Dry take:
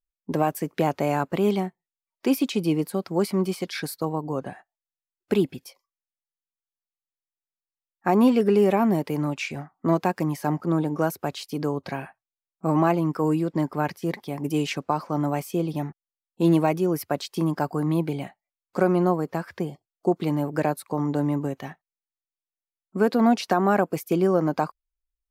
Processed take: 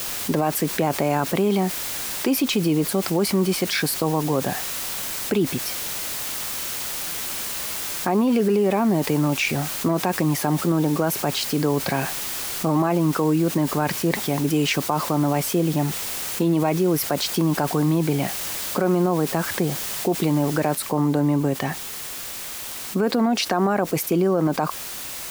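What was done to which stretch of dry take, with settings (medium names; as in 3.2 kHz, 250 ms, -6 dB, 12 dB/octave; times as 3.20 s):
20.75 s: noise floor step -44 dB -52 dB
whole clip: peak limiter -16.5 dBFS; level flattener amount 50%; trim +3.5 dB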